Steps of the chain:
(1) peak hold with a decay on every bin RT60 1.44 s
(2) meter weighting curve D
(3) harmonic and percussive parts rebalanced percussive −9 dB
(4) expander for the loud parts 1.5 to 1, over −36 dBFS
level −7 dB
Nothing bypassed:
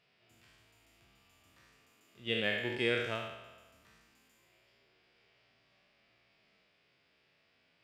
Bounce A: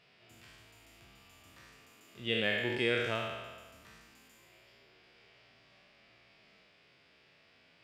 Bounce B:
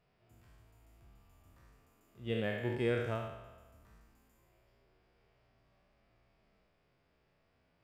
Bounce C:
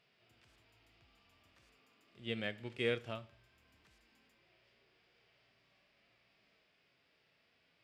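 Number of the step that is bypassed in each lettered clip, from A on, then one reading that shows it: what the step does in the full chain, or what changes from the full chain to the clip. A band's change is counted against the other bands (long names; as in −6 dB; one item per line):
4, change in momentary loudness spread +2 LU
2, 4 kHz band −12.0 dB
1, 125 Hz band +5.0 dB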